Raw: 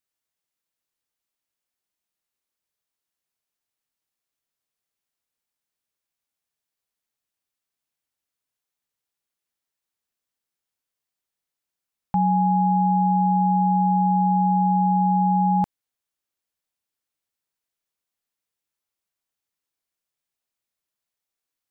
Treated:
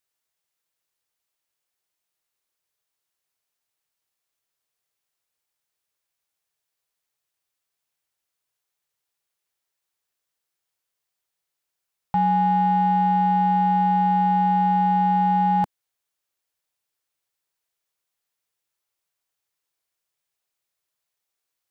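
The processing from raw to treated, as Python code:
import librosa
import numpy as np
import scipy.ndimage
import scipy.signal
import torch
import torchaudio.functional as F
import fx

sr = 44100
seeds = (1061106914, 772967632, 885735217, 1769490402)

p1 = fx.peak_eq(x, sr, hz=240.0, db=-12.5, octaves=0.42)
p2 = 10.0 ** (-26.5 / 20.0) * np.tanh(p1 / 10.0 ** (-26.5 / 20.0))
p3 = p1 + (p2 * 10.0 ** (-5.0 / 20.0))
y = fx.low_shelf(p3, sr, hz=86.0, db=-5.5)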